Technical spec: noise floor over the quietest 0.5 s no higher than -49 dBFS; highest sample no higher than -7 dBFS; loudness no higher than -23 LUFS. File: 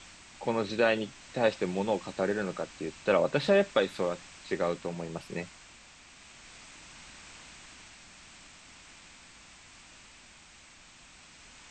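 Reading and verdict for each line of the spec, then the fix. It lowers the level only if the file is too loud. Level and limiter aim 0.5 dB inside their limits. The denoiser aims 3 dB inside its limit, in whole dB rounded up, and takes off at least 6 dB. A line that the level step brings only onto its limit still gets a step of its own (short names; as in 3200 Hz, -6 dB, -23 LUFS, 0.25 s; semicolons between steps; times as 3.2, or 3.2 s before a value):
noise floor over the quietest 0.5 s -55 dBFS: OK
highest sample -12.5 dBFS: OK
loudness -30.5 LUFS: OK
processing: none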